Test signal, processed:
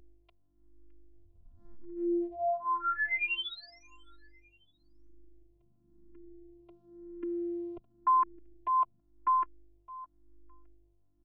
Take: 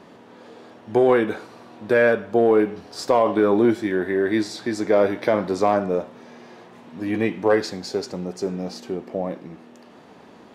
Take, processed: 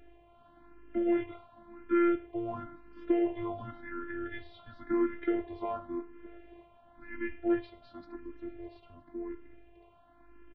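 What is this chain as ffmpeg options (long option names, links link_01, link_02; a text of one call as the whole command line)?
ffmpeg -i in.wav -filter_complex "[0:a]highpass=frequency=280:width_type=q:width=0.5412,highpass=frequency=280:width_type=q:width=1.307,lowpass=frequency=3200:width_type=q:width=0.5176,lowpass=frequency=3200:width_type=q:width=0.7071,lowpass=frequency=3200:width_type=q:width=1.932,afreqshift=-180,aeval=exprs='val(0)+0.00794*(sin(2*PI*50*n/s)+sin(2*PI*2*50*n/s)/2+sin(2*PI*3*50*n/s)/3+sin(2*PI*4*50*n/s)/4+sin(2*PI*5*50*n/s)/5)':channel_layout=same,asplit=2[link_01][link_02];[link_02]aecho=0:1:613|1226:0.0794|0.0262[link_03];[link_01][link_03]amix=inputs=2:normalize=0,afftfilt=real='hypot(re,im)*cos(PI*b)':imag='0':win_size=512:overlap=0.75,asplit=2[link_04][link_05];[link_05]afreqshift=0.94[link_06];[link_04][link_06]amix=inputs=2:normalize=1,volume=-6dB" out.wav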